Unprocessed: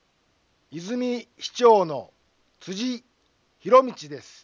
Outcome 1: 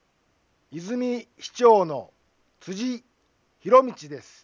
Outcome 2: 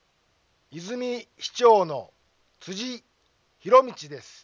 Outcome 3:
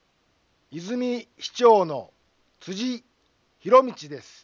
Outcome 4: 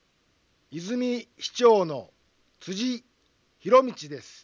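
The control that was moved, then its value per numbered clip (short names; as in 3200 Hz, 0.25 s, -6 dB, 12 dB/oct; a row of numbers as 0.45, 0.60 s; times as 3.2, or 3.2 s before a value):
bell, frequency: 3900, 260, 11000, 800 Hz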